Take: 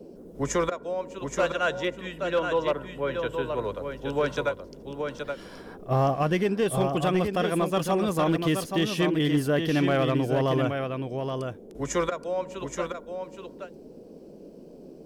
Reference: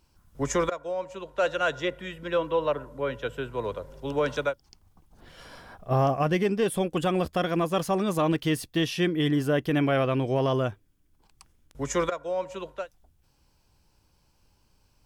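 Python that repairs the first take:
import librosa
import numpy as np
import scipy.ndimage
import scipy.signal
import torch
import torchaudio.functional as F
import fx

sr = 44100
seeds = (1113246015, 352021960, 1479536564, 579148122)

y = fx.fix_declip(x, sr, threshold_db=-16.5)
y = fx.noise_reduce(y, sr, print_start_s=13.91, print_end_s=14.41, reduce_db=19.0)
y = fx.fix_echo_inverse(y, sr, delay_ms=824, level_db=-6.0)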